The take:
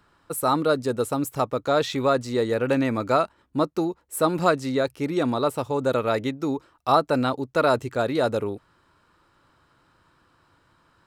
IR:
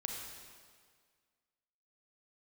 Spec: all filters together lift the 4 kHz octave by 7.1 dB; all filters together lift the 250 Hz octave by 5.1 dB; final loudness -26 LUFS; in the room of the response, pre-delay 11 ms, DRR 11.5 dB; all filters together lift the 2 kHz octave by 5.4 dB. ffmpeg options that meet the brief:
-filter_complex "[0:a]equalizer=f=250:t=o:g=6,equalizer=f=2000:t=o:g=6.5,equalizer=f=4000:t=o:g=6,asplit=2[s0][s1];[1:a]atrim=start_sample=2205,adelay=11[s2];[s1][s2]afir=irnorm=-1:irlink=0,volume=0.251[s3];[s0][s3]amix=inputs=2:normalize=0,volume=0.531"

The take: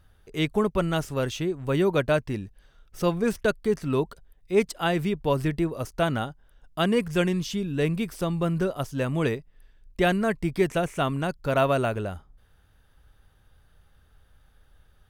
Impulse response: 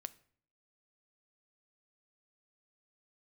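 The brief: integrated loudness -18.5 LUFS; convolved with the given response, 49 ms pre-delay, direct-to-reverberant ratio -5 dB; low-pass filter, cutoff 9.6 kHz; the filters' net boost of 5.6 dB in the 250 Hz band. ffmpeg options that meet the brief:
-filter_complex "[0:a]lowpass=9600,equalizer=f=250:t=o:g=8,asplit=2[s0][s1];[1:a]atrim=start_sample=2205,adelay=49[s2];[s1][s2]afir=irnorm=-1:irlink=0,volume=2.82[s3];[s0][s3]amix=inputs=2:normalize=0,volume=0.841"

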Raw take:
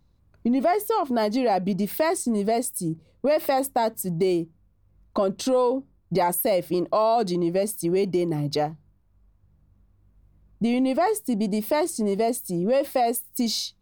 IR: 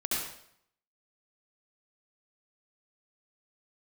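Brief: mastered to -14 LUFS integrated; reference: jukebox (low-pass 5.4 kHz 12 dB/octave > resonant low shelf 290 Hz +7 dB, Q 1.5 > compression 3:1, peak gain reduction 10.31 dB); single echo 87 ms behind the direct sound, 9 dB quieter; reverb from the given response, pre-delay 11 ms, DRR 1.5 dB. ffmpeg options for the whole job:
-filter_complex "[0:a]aecho=1:1:87:0.355,asplit=2[s0][s1];[1:a]atrim=start_sample=2205,adelay=11[s2];[s1][s2]afir=irnorm=-1:irlink=0,volume=0.376[s3];[s0][s3]amix=inputs=2:normalize=0,lowpass=5400,lowshelf=f=290:t=q:w=1.5:g=7,acompressor=threshold=0.0891:ratio=3,volume=3.16"

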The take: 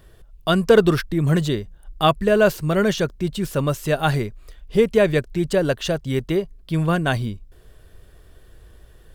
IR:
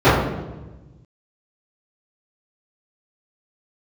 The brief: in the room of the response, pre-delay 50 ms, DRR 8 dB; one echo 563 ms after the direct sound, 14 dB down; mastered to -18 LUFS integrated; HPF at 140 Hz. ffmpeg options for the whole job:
-filter_complex "[0:a]highpass=140,aecho=1:1:563:0.2,asplit=2[s0][s1];[1:a]atrim=start_sample=2205,adelay=50[s2];[s1][s2]afir=irnorm=-1:irlink=0,volume=0.0141[s3];[s0][s3]amix=inputs=2:normalize=0,volume=1.19"

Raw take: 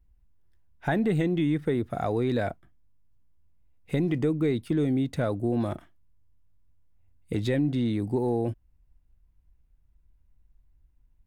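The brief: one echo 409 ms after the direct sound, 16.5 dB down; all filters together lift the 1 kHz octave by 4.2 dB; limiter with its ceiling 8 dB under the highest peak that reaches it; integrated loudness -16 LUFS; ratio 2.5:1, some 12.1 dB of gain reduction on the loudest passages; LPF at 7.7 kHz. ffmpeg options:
-af "lowpass=7700,equalizer=f=1000:t=o:g=6.5,acompressor=threshold=0.01:ratio=2.5,alimiter=level_in=2:limit=0.0631:level=0:latency=1,volume=0.501,aecho=1:1:409:0.15,volume=15.8"

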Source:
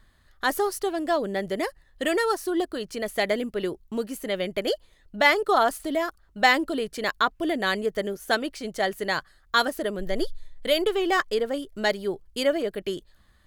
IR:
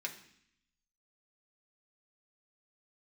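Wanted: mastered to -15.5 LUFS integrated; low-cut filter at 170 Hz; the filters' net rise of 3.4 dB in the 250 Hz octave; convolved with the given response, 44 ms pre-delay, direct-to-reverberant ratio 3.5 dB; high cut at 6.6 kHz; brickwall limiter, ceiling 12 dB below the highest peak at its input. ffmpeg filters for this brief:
-filter_complex "[0:a]highpass=170,lowpass=6600,equalizer=f=250:t=o:g=5.5,alimiter=limit=0.141:level=0:latency=1,asplit=2[s0][s1];[1:a]atrim=start_sample=2205,adelay=44[s2];[s1][s2]afir=irnorm=-1:irlink=0,volume=0.596[s3];[s0][s3]amix=inputs=2:normalize=0,volume=3.76"

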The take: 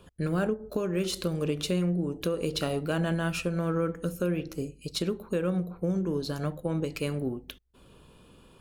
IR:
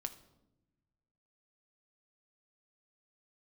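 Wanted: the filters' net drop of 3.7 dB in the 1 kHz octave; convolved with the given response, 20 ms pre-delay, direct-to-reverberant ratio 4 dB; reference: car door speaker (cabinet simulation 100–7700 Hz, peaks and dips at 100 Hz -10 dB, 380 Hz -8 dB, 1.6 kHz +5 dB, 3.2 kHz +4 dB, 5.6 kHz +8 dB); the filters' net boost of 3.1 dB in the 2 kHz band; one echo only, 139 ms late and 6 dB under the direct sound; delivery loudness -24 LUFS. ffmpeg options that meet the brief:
-filter_complex "[0:a]equalizer=f=1000:t=o:g=-8,equalizer=f=2000:t=o:g=3,aecho=1:1:139:0.501,asplit=2[s0][s1];[1:a]atrim=start_sample=2205,adelay=20[s2];[s1][s2]afir=irnorm=-1:irlink=0,volume=0.794[s3];[s0][s3]amix=inputs=2:normalize=0,highpass=100,equalizer=f=100:t=q:w=4:g=-10,equalizer=f=380:t=q:w=4:g=-8,equalizer=f=1600:t=q:w=4:g=5,equalizer=f=3200:t=q:w=4:g=4,equalizer=f=5600:t=q:w=4:g=8,lowpass=f=7700:w=0.5412,lowpass=f=7700:w=1.3066,volume=1.88"

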